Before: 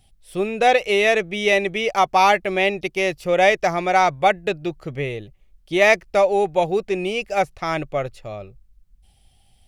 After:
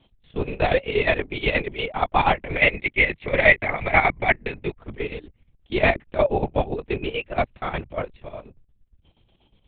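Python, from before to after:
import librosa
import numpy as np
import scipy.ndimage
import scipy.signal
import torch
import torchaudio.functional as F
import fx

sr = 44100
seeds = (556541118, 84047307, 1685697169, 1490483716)

y = fx.lpc_vocoder(x, sr, seeds[0], excitation='whisper', order=8)
y = fx.chopper(y, sr, hz=8.4, depth_pct=65, duty_pct=60)
y = fx.peak_eq(y, sr, hz=2100.0, db=13.0, octaves=0.48, at=(2.49, 4.79))
y = F.gain(torch.from_numpy(y), -2.5).numpy()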